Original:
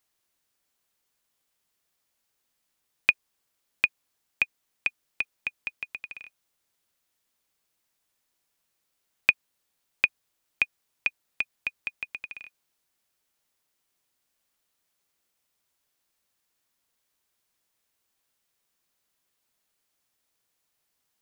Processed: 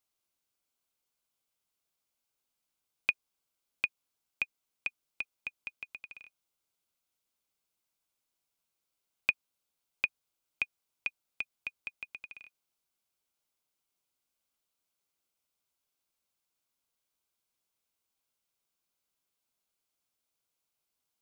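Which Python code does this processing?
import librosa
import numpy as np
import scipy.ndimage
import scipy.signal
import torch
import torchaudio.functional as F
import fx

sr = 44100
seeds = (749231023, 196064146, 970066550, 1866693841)

y = fx.notch(x, sr, hz=1800.0, q=5.2)
y = y * 10.0 ** (-7.5 / 20.0)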